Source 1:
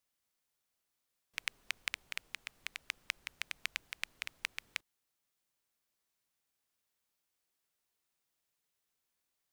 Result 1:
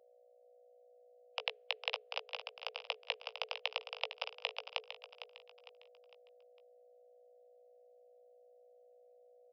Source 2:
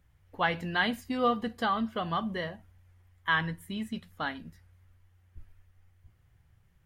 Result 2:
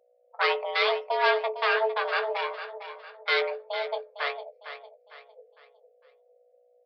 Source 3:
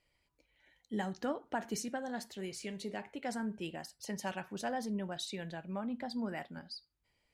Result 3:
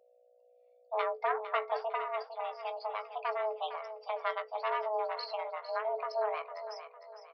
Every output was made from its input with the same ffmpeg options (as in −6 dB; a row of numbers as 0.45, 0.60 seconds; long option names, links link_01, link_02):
-filter_complex "[0:a]afftdn=noise_reduction=26:noise_floor=-44,highpass=frequency=90:poles=1,equalizer=frequency=300:width_type=o:width=2.2:gain=3,aeval=exprs='val(0)+0.000501*(sin(2*PI*60*n/s)+sin(2*PI*2*60*n/s)/2+sin(2*PI*3*60*n/s)/3+sin(2*PI*4*60*n/s)/4+sin(2*PI*5*60*n/s)/5)':channel_layout=same,aeval=exprs='0.211*(cos(1*acos(clip(val(0)/0.211,-1,1)))-cos(1*PI/2))+0.00944*(cos(4*acos(clip(val(0)/0.211,-1,1)))-cos(4*PI/2))+0.00596*(cos(5*acos(clip(val(0)/0.211,-1,1)))-cos(5*PI/2))+0.0668*(cos(6*acos(clip(val(0)/0.211,-1,1)))-cos(6*PI/2))+0.00133*(cos(8*acos(clip(val(0)/0.211,-1,1)))-cos(8*PI/2))':channel_layout=same,afreqshift=430,asplit=2[link_01][link_02];[link_02]adelay=18,volume=-10.5dB[link_03];[link_01][link_03]amix=inputs=2:normalize=0,asplit=2[link_04][link_05];[link_05]aecho=0:1:455|910|1365|1820:0.282|0.11|0.0429|0.0167[link_06];[link_04][link_06]amix=inputs=2:normalize=0,aresample=11025,aresample=44100,volume=-1dB"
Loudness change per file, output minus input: +0.5, +4.0, +4.5 LU